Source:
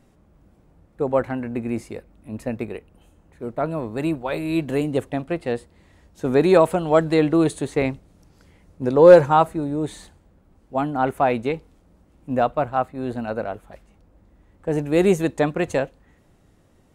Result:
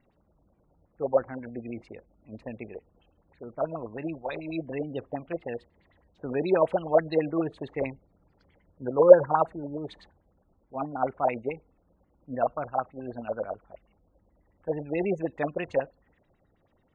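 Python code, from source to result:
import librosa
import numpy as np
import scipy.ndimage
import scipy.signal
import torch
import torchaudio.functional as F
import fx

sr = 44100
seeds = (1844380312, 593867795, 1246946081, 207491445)

y = fx.spec_gate(x, sr, threshold_db=-30, keep='strong')
y = fx.filter_lfo_lowpass(y, sr, shape='sine', hz=9.3, low_hz=520.0, high_hz=4300.0, q=4.3)
y = F.gain(torch.from_numpy(y), -12.0).numpy()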